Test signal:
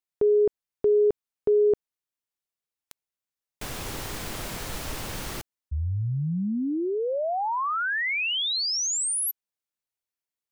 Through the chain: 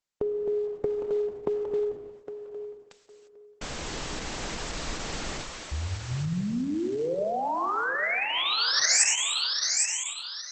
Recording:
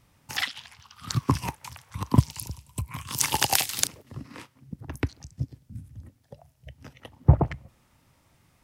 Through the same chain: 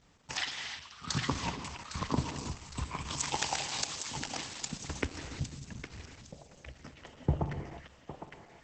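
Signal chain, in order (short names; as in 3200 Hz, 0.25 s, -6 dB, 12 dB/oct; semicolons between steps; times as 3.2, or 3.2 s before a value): bell 110 Hz -15 dB 0.29 oct; compressor 3:1, threshold -28 dBFS; on a send: thinning echo 0.809 s, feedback 36%, high-pass 650 Hz, level -5 dB; on the sum: non-linear reverb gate 0.38 s flat, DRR 5.5 dB; Opus 10 kbps 48000 Hz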